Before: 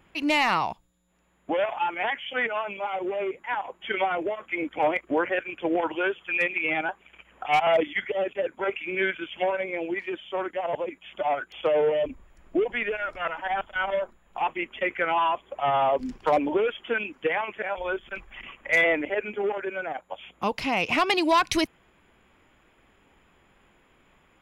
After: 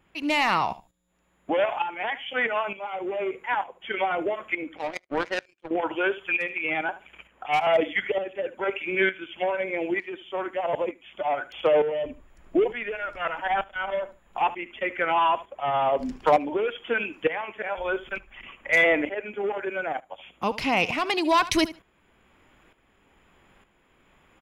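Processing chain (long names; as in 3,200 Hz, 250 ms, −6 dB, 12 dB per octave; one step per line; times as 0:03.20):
on a send: repeating echo 74 ms, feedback 15%, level −17 dB
on the sum: shaped tremolo saw up 1.1 Hz, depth 65%
0:04.77–0:05.71: power curve on the samples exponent 2
level +3.5 dB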